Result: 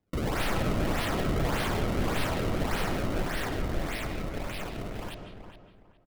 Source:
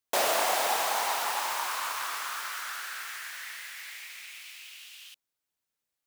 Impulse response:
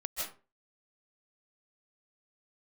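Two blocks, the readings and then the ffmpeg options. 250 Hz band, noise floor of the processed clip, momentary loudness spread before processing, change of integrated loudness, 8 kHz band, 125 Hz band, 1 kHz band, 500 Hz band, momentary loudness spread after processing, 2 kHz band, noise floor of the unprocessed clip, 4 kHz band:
+21.0 dB, -58 dBFS, 18 LU, -1.0 dB, -9.0 dB, n/a, -4.0 dB, +3.0 dB, 10 LU, -1.5 dB, under -85 dBFS, -3.5 dB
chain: -filter_complex "[0:a]highshelf=f=2.2k:g=-4,acrossover=split=1700[a][b];[b]acontrast=52[c];[a][c]amix=inputs=2:normalize=0,acrusher=samples=30:mix=1:aa=0.000001:lfo=1:lforange=48:lforate=1.7,aeval=exprs='(mod(35.5*val(0)+1,2)-1)/35.5':c=same,asplit=2[d][e];[e]adelay=414,lowpass=f=2.4k:p=1,volume=-8.5dB,asplit=2[f][g];[g]adelay=414,lowpass=f=2.4k:p=1,volume=0.27,asplit=2[h][i];[i]adelay=414,lowpass=f=2.4k:p=1,volume=0.27[j];[d][f][h][j]amix=inputs=4:normalize=0,asplit=2[k][l];[1:a]atrim=start_sample=2205,lowpass=4.9k,lowshelf=f=300:g=12[m];[l][m]afir=irnorm=-1:irlink=0,volume=-7.5dB[n];[k][n]amix=inputs=2:normalize=0,volume=2dB"

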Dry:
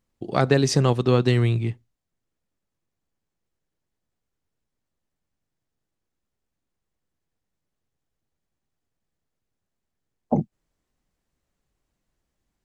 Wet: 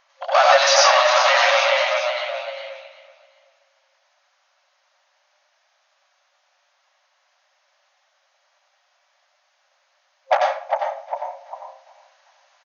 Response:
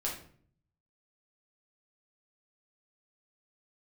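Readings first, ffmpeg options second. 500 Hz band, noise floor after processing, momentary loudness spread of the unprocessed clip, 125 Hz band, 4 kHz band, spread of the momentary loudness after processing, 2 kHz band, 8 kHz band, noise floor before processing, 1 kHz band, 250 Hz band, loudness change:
+6.5 dB, -66 dBFS, 11 LU, under -40 dB, +14.0 dB, 19 LU, +15.5 dB, +11.0 dB, -82 dBFS, +15.0 dB, under -40 dB, +4.5 dB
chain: -filter_complex "[0:a]asplit=2[a][b];[b]asplit=3[c][d][e];[c]adelay=401,afreqshift=60,volume=-13.5dB[f];[d]adelay=802,afreqshift=120,volume=-23.1dB[g];[e]adelay=1203,afreqshift=180,volume=-32.8dB[h];[f][g][h]amix=inputs=3:normalize=0[i];[a][i]amix=inputs=2:normalize=0,asplit=2[j][k];[k]highpass=f=720:p=1,volume=33dB,asoftclip=type=tanh:threshold=-4.5dB[l];[j][l]amix=inputs=2:normalize=0,lowpass=f=2.2k:p=1,volume=-6dB,aecho=1:1:379|758|1137:0.112|0.0449|0.018,asplit=2[m][n];[1:a]atrim=start_sample=2205,highshelf=f=3.7k:g=9.5,adelay=88[o];[n][o]afir=irnorm=-1:irlink=0,volume=-5dB[p];[m][p]amix=inputs=2:normalize=0,afftfilt=real='re*between(b*sr/4096,530,6800)':imag='im*between(b*sr/4096,530,6800)':win_size=4096:overlap=0.75"

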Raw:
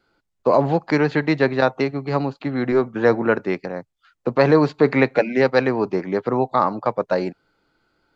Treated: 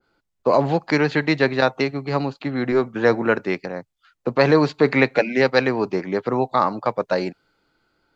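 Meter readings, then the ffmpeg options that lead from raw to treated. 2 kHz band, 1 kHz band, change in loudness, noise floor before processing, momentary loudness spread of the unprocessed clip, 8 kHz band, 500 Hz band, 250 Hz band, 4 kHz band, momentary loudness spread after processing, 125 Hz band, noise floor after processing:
+2.0 dB, -0.5 dB, -0.5 dB, -75 dBFS, 8 LU, n/a, -1.0 dB, -1.0 dB, +4.5 dB, 9 LU, -1.0 dB, -76 dBFS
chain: -af "adynamicequalizer=threshold=0.0282:dfrequency=1800:dqfactor=0.7:tfrequency=1800:tqfactor=0.7:attack=5:release=100:ratio=0.375:range=3:mode=boostabove:tftype=highshelf,volume=-1dB"

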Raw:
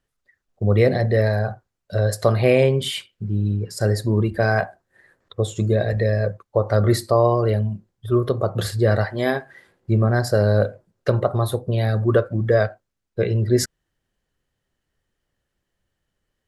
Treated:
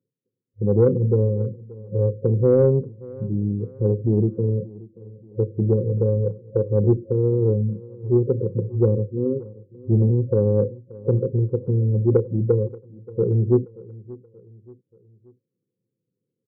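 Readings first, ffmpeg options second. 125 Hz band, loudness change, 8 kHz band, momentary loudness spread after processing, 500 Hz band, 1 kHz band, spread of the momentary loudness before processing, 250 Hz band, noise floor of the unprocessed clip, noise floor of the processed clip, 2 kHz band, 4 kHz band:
0.0 dB, -1.0 dB, under -40 dB, 14 LU, -1.0 dB, under -15 dB, 10 LU, +1.0 dB, -79 dBFS, -82 dBFS, under -25 dB, under -40 dB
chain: -af "afftfilt=real='re*between(b*sr/4096,100,540)':imag='im*between(b*sr/4096,100,540)':win_size=4096:overlap=0.75,acontrast=36,aecho=1:1:580|1160|1740:0.0944|0.0415|0.0183,volume=-4dB"

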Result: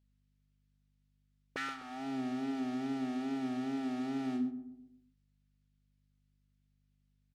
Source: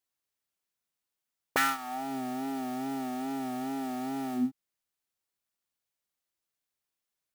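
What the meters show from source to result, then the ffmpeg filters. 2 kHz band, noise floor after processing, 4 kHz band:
-9.5 dB, -75 dBFS, -7.0 dB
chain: -filter_complex "[0:a]lowpass=4.5k,equalizer=f=870:w=1.4:g=-10,alimiter=level_in=4.5dB:limit=-24dB:level=0:latency=1:release=389,volume=-4.5dB,aeval=exprs='val(0)+0.000251*(sin(2*PI*50*n/s)+sin(2*PI*2*50*n/s)/2+sin(2*PI*3*50*n/s)/3+sin(2*PI*4*50*n/s)/4+sin(2*PI*5*50*n/s)/5)':c=same,asplit=2[a][b];[b]adelay=127,lowpass=f=810:p=1,volume=-9.5dB,asplit=2[c][d];[d]adelay=127,lowpass=f=810:p=1,volume=0.49,asplit=2[e][f];[f]adelay=127,lowpass=f=810:p=1,volume=0.49,asplit=2[g][h];[h]adelay=127,lowpass=f=810:p=1,volume=0.49,asplit=2[i][j];[j]adelay=127,lowpass=f=810:p=1,volume=0.49[k];[c][e][g][i][k]amix=inputs=5:normalize=0[l];[a][l]amix=inputs=2:normalize=0" -ar 48000 -c:a libopus -b:a 64k

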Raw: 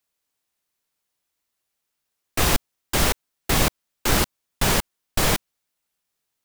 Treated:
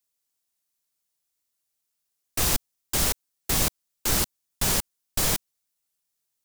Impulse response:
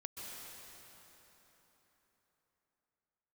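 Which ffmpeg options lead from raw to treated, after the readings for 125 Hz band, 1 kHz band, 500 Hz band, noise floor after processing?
-6.0 dB, -8.0 dB, -8.0 dB, -80 dBFS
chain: -af "bass=f=250:g=2,treble=f=4k:g=9,volume=-8dB"

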